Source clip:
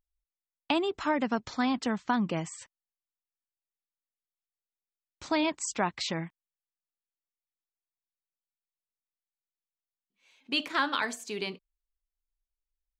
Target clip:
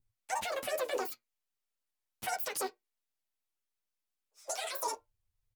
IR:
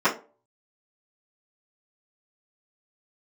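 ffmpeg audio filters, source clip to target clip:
-filter_complex "[0:a]bandreject=frequency=50:width_type=h:width=6,bandreject=frequency=100:width_type=h:width=6,bandreject=frequency=150:width_type=h:width=6,bandreject=frequency=200:width_type=h:width=6,bandreject=frequency=250:width_type=h:width=6,adynamicequalizer=threshold=0.00794:dfrequency=1400:dqfactor=1.1:tfrequency=1400:tqfactor=1.1:attack=5:release=100:ratio=0.375:range=3.5:mode=cutabove:tftype=bell,acrusher=bits=5:mode=log:mix=0:aa=0.000001,acompressor=threshold=-35dB:ratio=5,alimiter=level_in=6.5dB:limit=-24dB:level=0:latency=1:release=48,volume=-6.5dB,asplit=3[link_01][link_02][link_03];[link_02]asetrate=29433,aresample=44100,atempo=1.49831,volume=-16dB[link_04];[link_03]asetrate=55563,aresample=44100,atempo=0.793701,volume=-12dB[link_05];[link_01][link_04][link_05]amix=inputs=3:normalize=0,flanger=delay=18:depth=4.2:speed=2.6,acrossover=split=470|3000[link_06][link_07][link_08];[link_07]acompressor=threshold=-48dB:ratio=6[link_09];[link_06][link_09][link_08]amix=inputs=3:normalize=0,asplit=2[link_10][link_11];[1:a]atrim=start_sample=2205,adelay=14[link_12];[link_11][link_12]afir=irnorm=-1:irlink=0,volume=-27dB[link_13];[link_10][link_13]amix=inputs=2:normalize=0,asetrate=103194,aresample=44100,volume=8.5dB"

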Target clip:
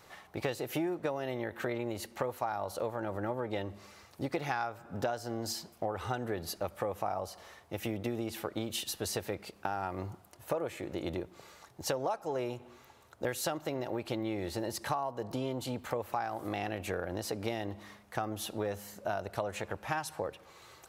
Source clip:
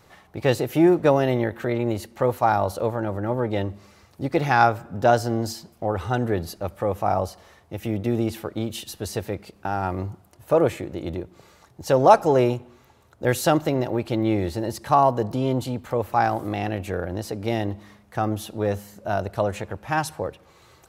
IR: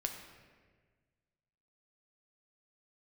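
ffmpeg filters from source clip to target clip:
-af "lowshelf=frequency=330:gain=-9,acompressor=threshold=-30dB:ratio=16"

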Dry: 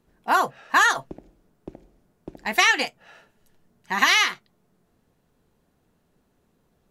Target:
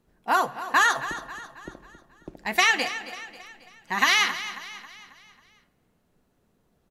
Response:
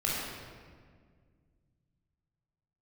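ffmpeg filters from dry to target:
-filter_complex "[0:a]aecho=1:1:271|542|813|1084|1355:0.211|0.0993|0.0467|0.0219|0.0103,asplit=2[link_01][link_02];[1:a]atrim=start_sample=2205[link_03];[link_02][link_03]afir=irnorm=-1:irlink=0,volume=-24dB[link_04];[link_01][link_04]amix=inputs=2:normalize=0,volume=-2.5dB"

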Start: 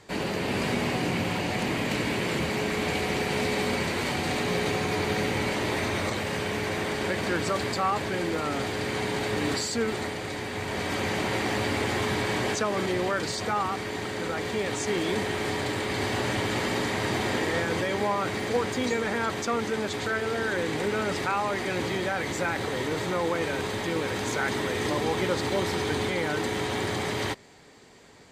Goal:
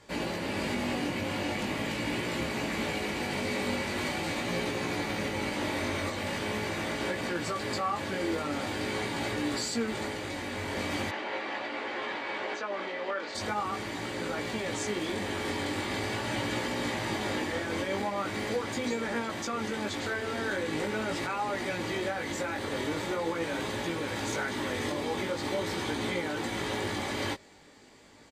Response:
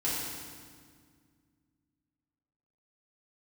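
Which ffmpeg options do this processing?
-filter_complex "[0:a]aecho=1:1:3.5:0.31,alimiter=limit=-19dB:level=0:latency=1:release=182,flanger=delay=17:depth=3.8:speed=0.42,asplit=3[link_01][link_02][link_03];[link_01]afade=type=out:start_time=11.1:duration=0.02[link_04];[link_02]highpass=440,lowpass=3100,afade=type=in:start_time=11.1:duration=0.02,afade=type=out:start_time=13.34:duration=0.02[link_05];[link_03]afade=type=in:start_time=13.34:duration=0.02[link_06];[link_04][link_05][link_06]amix=inputs=3:normalize=0"

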